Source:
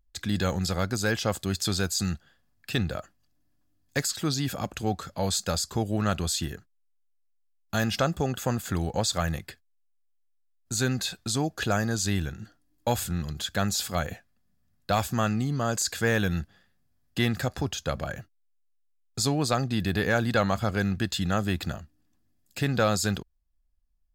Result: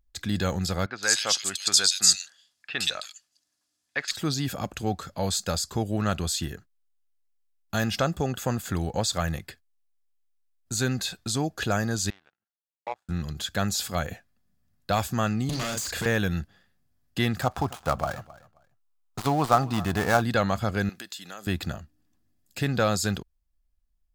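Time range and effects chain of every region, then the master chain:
0.86–4.11 weighting filter ITU-R 468 + bands offset in time lows, highs 0.12 s, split 2600 Hz
12.1–13.09 band-pass 890 Hz, Q 2 + power-law curve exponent 2 + mismatched tape noise reduction encoder only
15.49–16.06 doubler 38 ms -6 dB + hard clip -29.5 dBFS + three-band squash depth 100%
17.41–20.22 switching dead time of 0.12 ms + band shelf 940 Hz +9.5 dB 1.2 oct + feedback echo 0.266 s, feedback 20%, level -20 dB
20.89–21.47 tilt +2.5 dB/oct + compressor 5:1, threshold -36 dBFS + HPF 250 Hz
whole clip: dry

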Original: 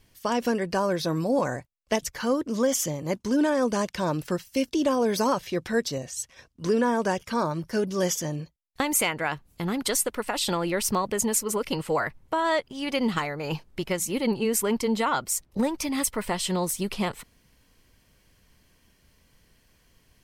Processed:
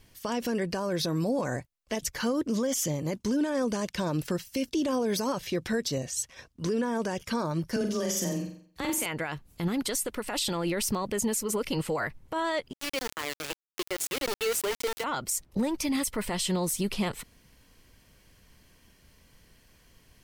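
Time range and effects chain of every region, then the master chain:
7.76–9.06 compressor 2.5:1, threshold -26 dBFS + frequency shift +19 Hz + flutter echo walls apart 7.7 m, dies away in 0.49 s
12.73–15.04 steep high-pass 290 Hz 72 dB/oct + sample gate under -27 dBFS + sustainer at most 130 dB/s
whole clip: limiter -22 dBFS; dynamic EQ 960 Hz, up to -4 dB, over -45 dBFS, Q 0.75; gain +2.5 dB

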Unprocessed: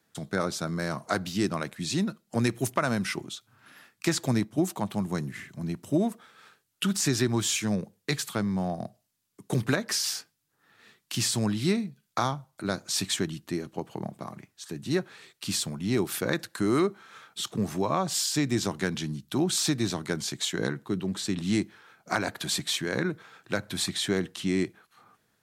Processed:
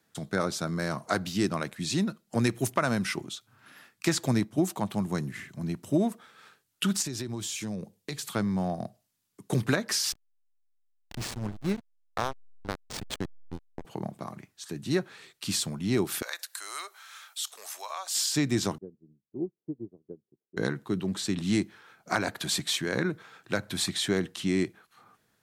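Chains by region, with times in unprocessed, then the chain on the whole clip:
7.02–8.27 bell 1500 Hz -6 dB 1.1 oct + compressor, threshold -31 dBFS
10.12–13.85 power-law curve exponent 1.4 + backlash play -23.5 dBFS
16.22–18.15 HPF 610 Hz 24 dB/oct + tilt +4 dB/oct + compressor 1.5:1, threshold -47 dBFS
18.78–20.57 ladder low-pass 500 Hz, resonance 50% + upward expander 2.5:1, over -47 dBFS
whole clip: dry

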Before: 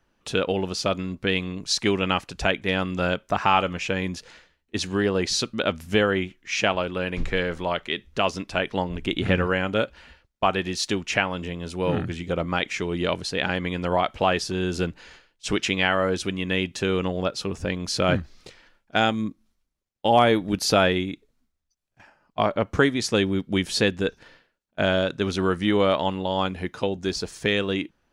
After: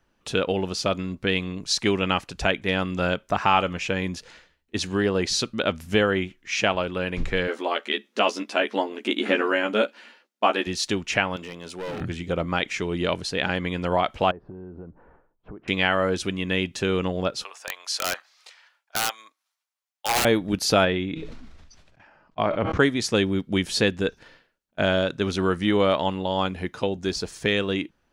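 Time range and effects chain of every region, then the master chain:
7.47–10.67 brick-wall FIR high-pass 200 Hz + doubler 14 ms -3 dB
11.36–12.01 HPF 430 Hz 6 dB/oct + hard clip -29 dBFS
14.31–15.68 LPF 1100 Hz 24 dB/oct + compressor, threshold -37 dBFS
17.44–20.25 HPF 760 Hz 24 dB/oct + wrapped overs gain 16.5 dB
20.85–22.8 LPF 4000 Hz + resonator 160 Hz, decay 0.32 s, mix 30% + sustainer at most 33 dB/s
whole clip: dry

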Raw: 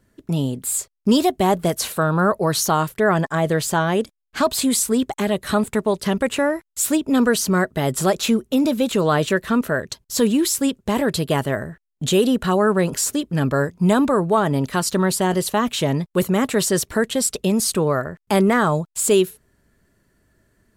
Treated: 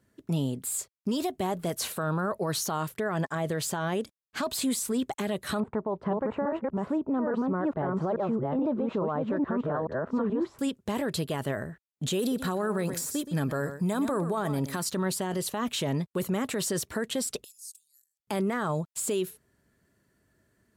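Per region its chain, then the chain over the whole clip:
5.6–10.59 reverse delay 0.427 s, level -1.5 dB + synth low-pass 980 Hz, resonance Q 1.7
12.19–14.85 high shelf 9000 Hz +10.5 dB + notch 2900 Hz, Q 9.1 + echo 0.122 s -15 dB
17.44–18.2 inverse Chebyshev high-pass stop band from 1300 Hz, stop band 70 dB + compressor, threshold -32 dBFS + transient shaper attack -12 dB, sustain -4 dB
whole clip: de-esser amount 35%; HPF 71 Hz; limiter -15 dBFS; gain -6 dB

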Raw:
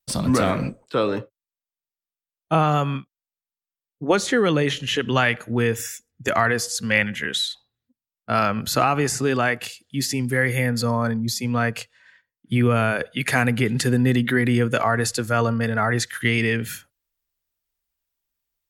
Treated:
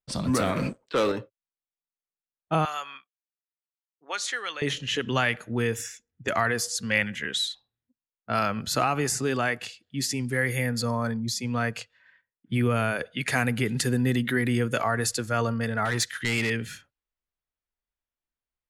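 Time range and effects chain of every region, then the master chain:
0.56–1.12 low shelf 140 Hz -9.5 dB + notch 730 Hz, Q 5.8 + sample leveller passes 2
2.65–4.62 HPF 1200 Hz + high shelf 9600 Hz +3.5 dB
15.85–16.5 bell 4300 Hz +4 dB 2.4 oct + hard clip -16.5 dBFS
whole clip: high shelf 5300 Hz +6 dB; low-pass opened by the level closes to 2200 Hz, open at -16.5 dBFS; gain -5.5 dB

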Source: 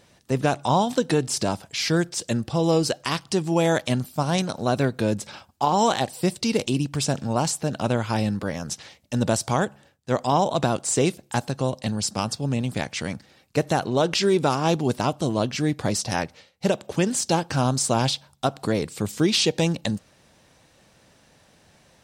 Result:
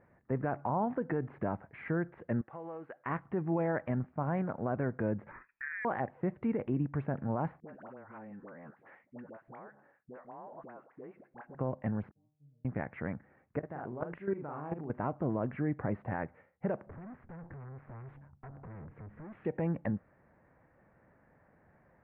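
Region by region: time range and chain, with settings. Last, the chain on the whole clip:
2.41–3.06 HPF 1400 Hz 6 dB/oct + high shelf 5000 Hz -7 dB + compressor 5:1, threshold -31 dBFS
5.31–5.85 inverted band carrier 2600 Hz + compressor 2:1, threshold -37 dBFS
7.6–11.55 HPF 230 Hz + compressor 12:1, threshold -36 dBFS + dispersion highs, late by 79 ms, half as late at 720 Hz
12.11–12.65 elliptic band-stop 660–8500 Hz + passive tone stack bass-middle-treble 6-0-2 + metallic resonator 150 Hz, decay 0.42 s, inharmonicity 0.002
13.59–14.9 doubler 41 ms -4.5 dB + level quantiser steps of 17 dB
16.86–19.45 bell 96 Hz +14.5 dB 2.2 oct + compressor 5:1, threshold -22 dBFS + tube stage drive 38 dB, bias 0.65
whole clip: steep low-pass 2000 Hz 48 dB/oct; limiter -16.5 dBFS; gain -7 dB

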